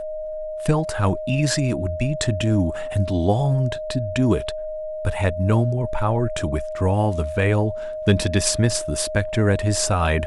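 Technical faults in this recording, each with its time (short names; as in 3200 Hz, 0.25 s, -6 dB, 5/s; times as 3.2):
tone 620 Hz -27 dBFS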